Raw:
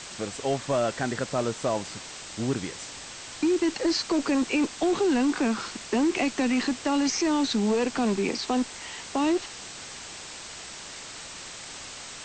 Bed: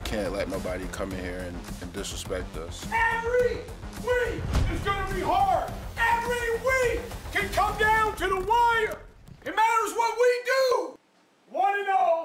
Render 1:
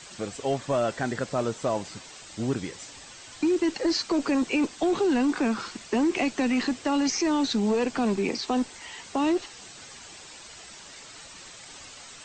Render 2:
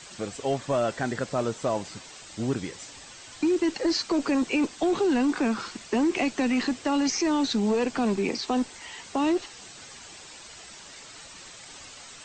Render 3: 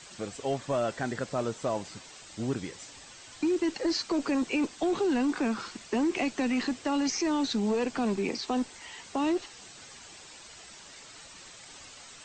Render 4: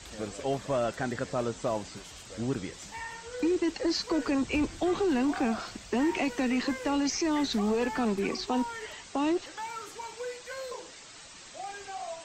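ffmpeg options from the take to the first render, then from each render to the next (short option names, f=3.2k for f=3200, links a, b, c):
-af "afftdn=nr=8:nf=-41"
-af anull
-af "volume=-3.5dB"
-filter_complex "[1:a]volume=-16.5dB[a];[0:a][a]amix=inputs=2:normalize=0"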